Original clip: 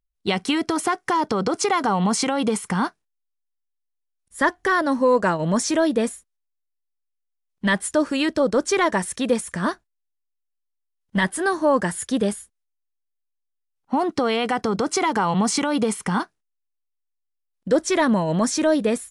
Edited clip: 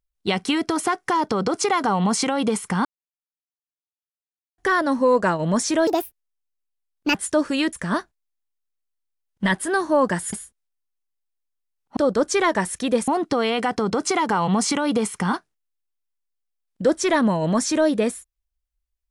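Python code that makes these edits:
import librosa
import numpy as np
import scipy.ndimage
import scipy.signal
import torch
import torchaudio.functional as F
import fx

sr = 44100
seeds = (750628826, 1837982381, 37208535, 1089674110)

y = fx.edit(x, sr, fx.silence(start_s=2.85, length_s=1.73),
    fx.speed_span(start_s=5.87, length_s=1.89, speed=1.48),
    fx.move(start_s=8.34, length_s=1.11, to_s=13.94),
    fx.cut(start_s=12.05, length_s=0.25), tone=tone)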